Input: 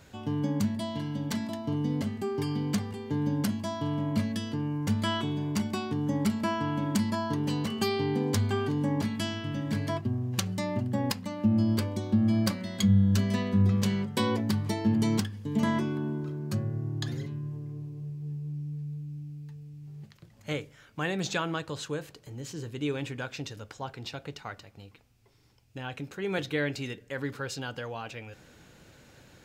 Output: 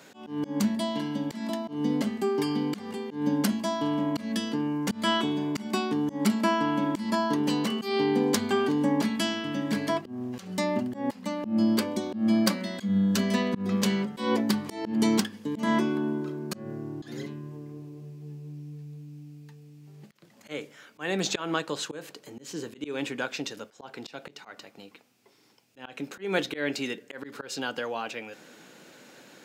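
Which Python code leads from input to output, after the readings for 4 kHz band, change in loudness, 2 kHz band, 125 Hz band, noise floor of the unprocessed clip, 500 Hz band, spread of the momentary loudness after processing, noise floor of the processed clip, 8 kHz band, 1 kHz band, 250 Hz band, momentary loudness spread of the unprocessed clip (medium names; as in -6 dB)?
+3.5 dB, +2.0 dB, +3.0 dB, -7.5 dB, -57 dBFS, +4.0 dB, 17 LU, -56 dBFS, +3.0 dB, +4.0 dB, +2.0 dB, 14 LU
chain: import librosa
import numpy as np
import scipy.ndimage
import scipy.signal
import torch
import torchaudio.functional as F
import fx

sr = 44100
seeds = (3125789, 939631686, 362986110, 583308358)

y = scipy.signal.sosfilt(scipy.signal.butter(4, 200.0, 'highpass', fs=sr, output='sos'), x)
y = fx.auto_swell(y, sr, attack_ms=169.0)
y = F.gain(torch.from_numpy(y), 5.5).numpy()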